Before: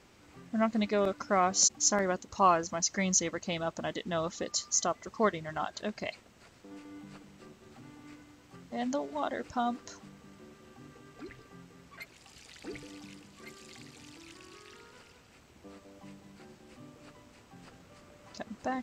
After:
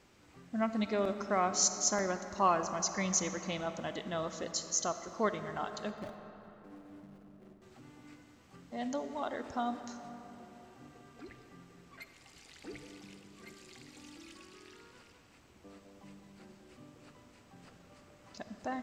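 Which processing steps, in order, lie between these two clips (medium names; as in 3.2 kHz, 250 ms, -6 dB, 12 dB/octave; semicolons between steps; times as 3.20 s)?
5.89–7.62 s: median filter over 41 samples; 13.87–14.44 s: comb 3.6 ms; reverberation RT60 3.8 s, pre-delay 10 ms, DRR 8.5 dB; trim -4 dB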